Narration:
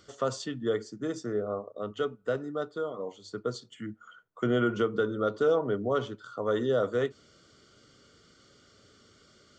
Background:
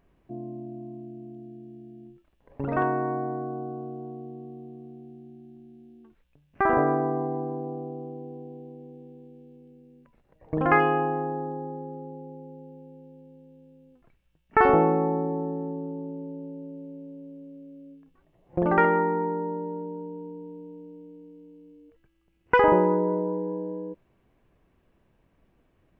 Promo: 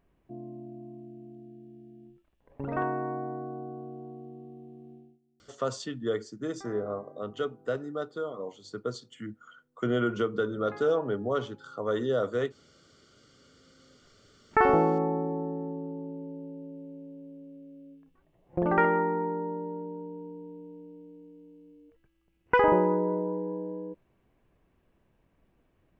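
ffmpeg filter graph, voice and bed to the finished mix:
ffmpeg -i stem1.wav -i stem2.wav -filter_complex "[0:a]adelay=5400,volume=-1dB[link_01];[1:a]volume=18dB,afade=type=out:start_time=4.94:duration=0.25:silence=0.0891251,afade=type=in:start_time=13.32:duration=1.1:silence=0.0707946[link_02];[link_01][link_02]amix=inputs=2:normalize=0" out.wav

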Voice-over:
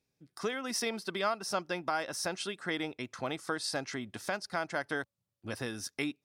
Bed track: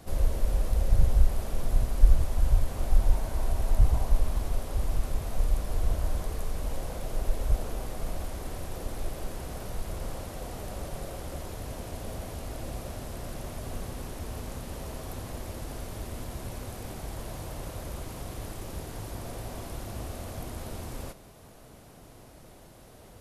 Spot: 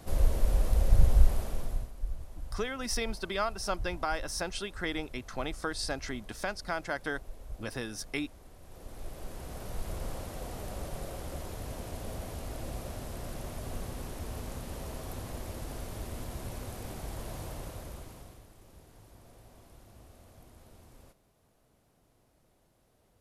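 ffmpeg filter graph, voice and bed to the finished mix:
ffmpeg -i stem1.wav -i stem2.wav -filter_complex "[0:a]adelay=2150,volume=0dB[link_01];[1:a]volume=15dB,afade=type=out:start_time=1.29:duration=0.63:silence=0.141254,afade=type=in:start_time=8.6:duration=1.3:silence=0.177828,afade=type=out:start_time=17.45:duration=1:silence=0.16788[link_02];[link_01][link_02]amix=inputs=2:normalize=0" out.wav

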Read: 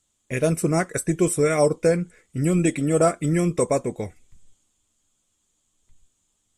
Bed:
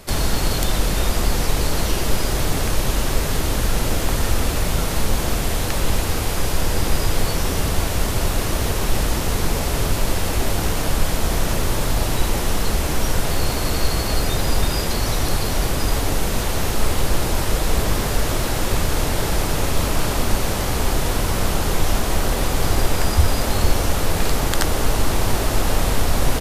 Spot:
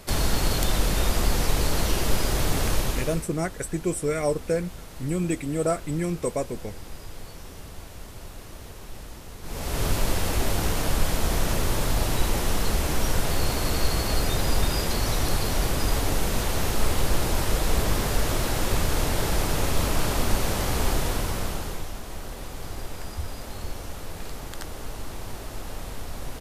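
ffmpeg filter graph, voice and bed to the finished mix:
ffmpeg -i stem1.wav -i stem2.wav -filter_complex "[0:a]adelay=2650,volume=-6dB[link_01];[1:a]volume=13dB,afade=type=out:start_time=2.74:duration=0.54:silence=0.141254,afade=type=in:start_time=9.42:duration=0.46:silence=0.149624,afade=type=out:start_time=20.89:duration=1.01:silence=0.237137[link_02];[link_01][link_02]amix=inputs=2:normalize=0" out.wav

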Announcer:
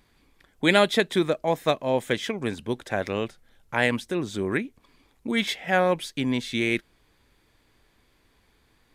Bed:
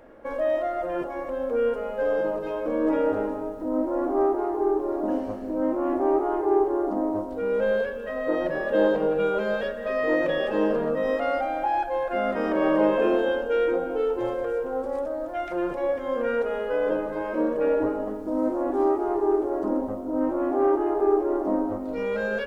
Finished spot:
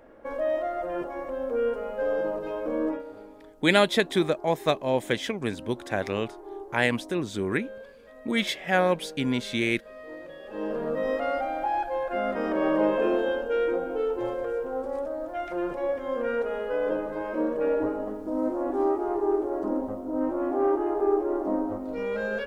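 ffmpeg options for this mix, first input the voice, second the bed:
ffmpeg -i stem1.wav -i stem2.wav -filter_complex "[0:a]adelay=3000,volume=-1dB[link_01];[1:a]volume=13.5dB,afade=type=out:start_time=2.82:duration=0.21:silence=0.158489,afade=type=in:start_time=10.43:duration=0.54:silence=0.158489[link_02];[link_01][link_02]amix=inputs=2:normalize=0" out.wav

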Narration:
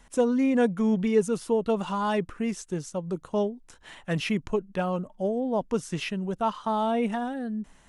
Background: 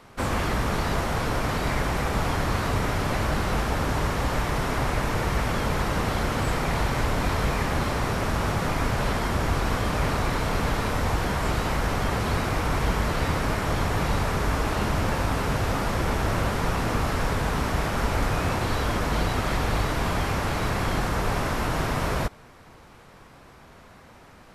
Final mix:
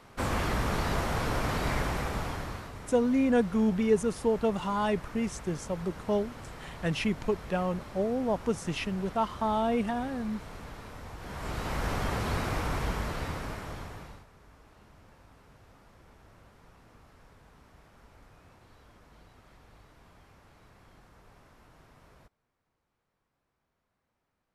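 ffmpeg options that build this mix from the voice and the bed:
ffmpeg -i stem1.wav -i stem2.wav -filter_complex "[0:a]adelay=2750,volume=-2dB[link_01];[1:a]volume=9.5dB,afade=type=out:start_time=1.75:duration=0.97:silence=0.177828,afade=type=in:start_time=11.18:duration=0.71:silence=0.211349,afade=type=out:start_time=12.54:duration=1.72:silence=0.0473151[link_02];[link_01][link_02]amix=inputs=2:normalize=0" out.wav

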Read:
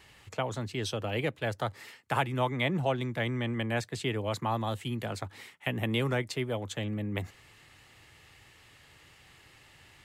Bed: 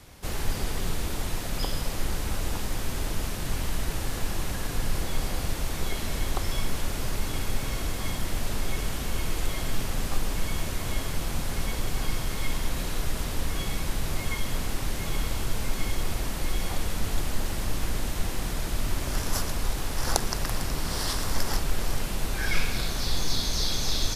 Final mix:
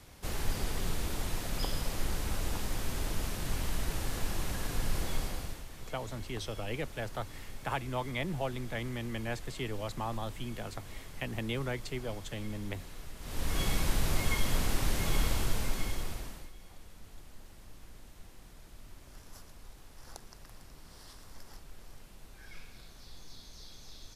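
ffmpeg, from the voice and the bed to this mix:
ffmpeg -i stem1.wav -i stem2.wav -filter_complex "[0:a]adelay=5550,volume=-6dB[link_01];[1:a]volume=12dB,afade=type=out:start_time=5.12:duration=0.53:silence=0.237137,afade=type=in:start_time=13.2:duration=0.43:silence=0.149624,afade=type=out:start_time=15.25:duration=1.26:silence=0.0707946[link_02];[link_01][link_02]amix=inputs=2:normalize=0" out.wav

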